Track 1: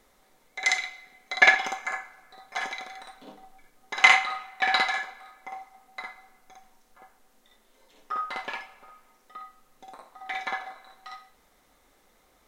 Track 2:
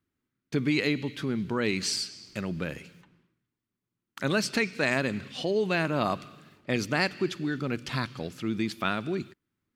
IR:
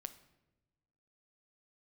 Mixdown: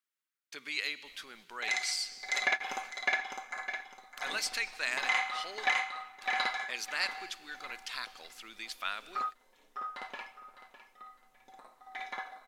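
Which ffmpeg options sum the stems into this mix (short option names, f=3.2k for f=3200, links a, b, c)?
-filter_complex "[0:a]adelay=1050,volume=-3.5dB,asplit=2[a][b];[b]volume=-5dB[c];[1:a]highpass=980,highshelf=f=2.5k:g=7,volume=-7.5dB,asplit=3[d][e][f];[d]atrim=end=5.66,asetpts=PTS-STARTPTS,afade=t=out:st=5.656:d=0.004:c=hsin[g];[e]atrim=start=5.66:end=6.21,asetpts=PTS-STARTPTS,volume=0[h];[f]atrim=start=6.21,asetpts=PTS-STARTPTS,afade=t=in:d=0.004:c=hsin[i];[g][h][i]concat=n=3:v=0:a=1,asplit=2[j][k];[k]apad=whole_len=596525[l];[a][l]sidechaingate=range=-33dB:threshold=-56dB:ratio=16:detection=peak[m];[c]aecho=0:1:606|1212|1818|2424:1|0.22|0.0484|0.0106[n];[m][j][n]amix=inputs=3:normalize=0,alimiter=limit=-17dB:level=0:latency=1:release=311"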